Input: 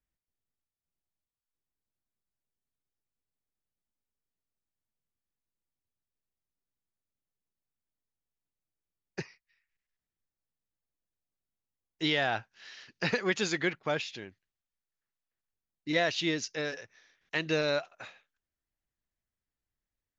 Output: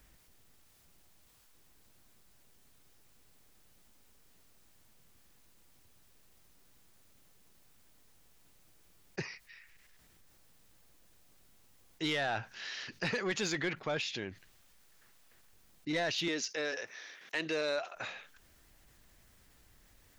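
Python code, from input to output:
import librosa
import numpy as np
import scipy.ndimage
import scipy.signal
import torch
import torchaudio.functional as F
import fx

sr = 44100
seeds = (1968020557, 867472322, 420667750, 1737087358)

y = fx.highpass(x, sr, hz=300.0, slope=12, at=(16.28, 17.96))
y = 10.0 ** (-22.0 / 20.0) * np.tanh(y / 10.0 ** (-22.0 / 20.0))
y = fx.env_flatten(y, sr, amount_pct=50)
y = y * 10.0 ** (-4.0 / 20.0)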